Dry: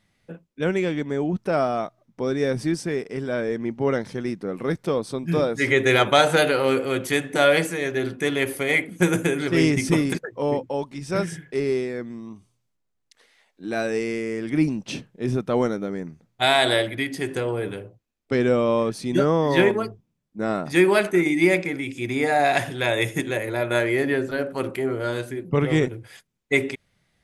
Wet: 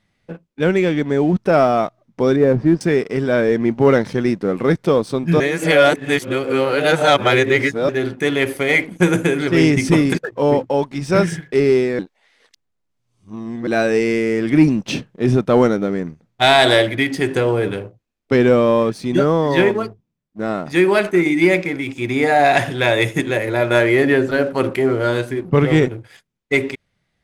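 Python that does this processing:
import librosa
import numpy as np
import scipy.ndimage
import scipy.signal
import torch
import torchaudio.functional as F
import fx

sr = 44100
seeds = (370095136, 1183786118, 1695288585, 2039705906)

y = fx.lowpass(x, sr, hz=1300.0, slope=12, at=(2.36, 2.81))
y = fx.edit(y, sr, fx.reverse_span(start_s=5.4, length_s=2.49),
    fx.reverse_span(start_s=11.99, length_s=1.68), tone=tone)
y = fx.high_shelf(y, sr, hz=8700.0, db=-10.5)
y = fx.rider(y, sr, range_db=10, speed_s=2.0)
y = fx.leveller(y, sr, passes=1)
y = F.gain(torch.from_numpy(y), 2.5).numpy()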